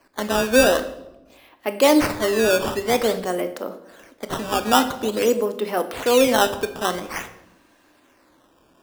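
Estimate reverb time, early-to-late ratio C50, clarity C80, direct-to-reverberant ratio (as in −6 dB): 0.95 s, 12.0 dB, 15.0 dB, 9.0 dB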